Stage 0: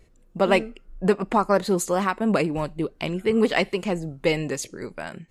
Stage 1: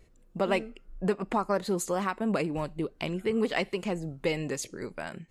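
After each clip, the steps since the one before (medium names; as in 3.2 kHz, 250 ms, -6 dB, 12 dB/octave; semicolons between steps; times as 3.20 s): compression 1.5:1, threshold -28 dBFS, peak gain reduction 5.5 dB; trim -3 dB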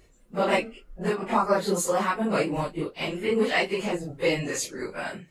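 phase randomisation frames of 100 ms; bass shelf 330 Hz -7 dB; trim +6.5 dB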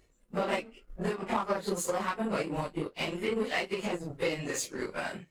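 compression 3:1, threshold -33 dBFS, peak gain reduction 12 dB; power-law waveshaper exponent 1.4; trim +5.5 dB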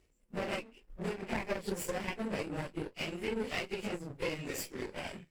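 comb filter that takes the minimum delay 0.38 ms; trim -4 dB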